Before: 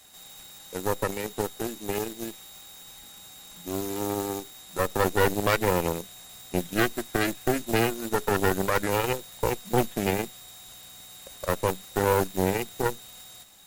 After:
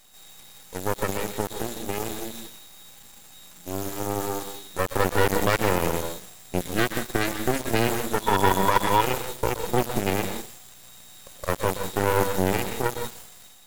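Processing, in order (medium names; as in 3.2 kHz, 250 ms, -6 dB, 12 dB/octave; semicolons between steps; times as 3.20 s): transient shaper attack 0 dB, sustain +8 dB; on a send at -4 dB: reverberation RT60 0.40 s, pre-delay 112 ms; on the sum: half-wave rectifier; 8.21–9.01 s: small resonant body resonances 960/3400 Hz, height 16 dB; trim +1.5 dB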